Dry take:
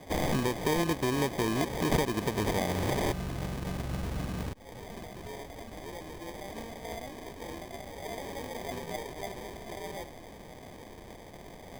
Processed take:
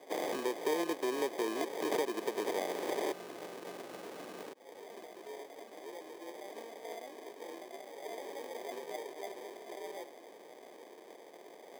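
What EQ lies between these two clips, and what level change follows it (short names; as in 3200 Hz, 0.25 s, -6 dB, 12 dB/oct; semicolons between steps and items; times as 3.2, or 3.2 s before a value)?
ladder high-pass 320 Hz, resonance 40%; +1.5 dB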